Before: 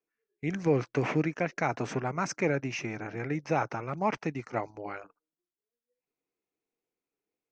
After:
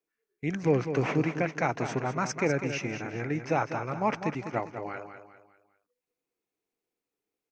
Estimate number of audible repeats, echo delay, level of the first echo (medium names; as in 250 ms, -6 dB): 4, 200 ms, -9.0 dB